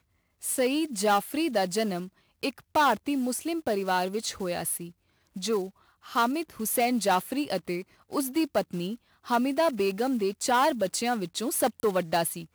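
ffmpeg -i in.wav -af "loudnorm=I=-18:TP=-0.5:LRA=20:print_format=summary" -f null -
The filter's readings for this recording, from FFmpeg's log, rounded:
Input Integrated:    -27.8 LUFS
Input True Peak:     -14.2 dBTP
Input LRA:             2.7 LU
Input Threshold:     -38.0 LUFS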